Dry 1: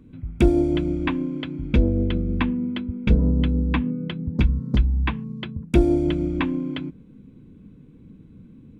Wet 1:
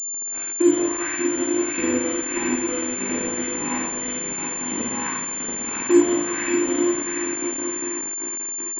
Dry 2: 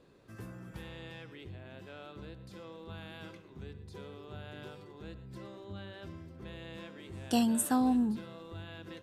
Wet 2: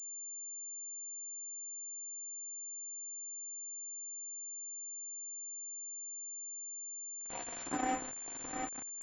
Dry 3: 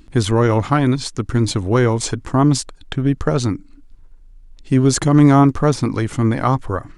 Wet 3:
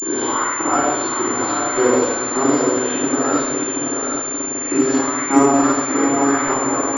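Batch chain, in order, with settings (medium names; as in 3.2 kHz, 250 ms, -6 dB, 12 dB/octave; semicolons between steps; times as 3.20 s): reverse spectral sustain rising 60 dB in 0.92 s; gate with hold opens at -35 dBFS; flange 0.82 Hz, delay 7.8 ms, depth 4.5 ms, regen +82%; LFO high-pass saw up 1.7 Hz 330–2500 Hz; peaking EQ 270 Hz +4.5 dB 0.39 oct; echo that smears into a reverb 780 ms, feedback 55%, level -3.5 dB; simulated room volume 610 m³, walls mixed, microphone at 9.8 m; crossover distortion -16.5 dBFS; class-D stage that switches slowly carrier 7.2 kHz; trim -15 dB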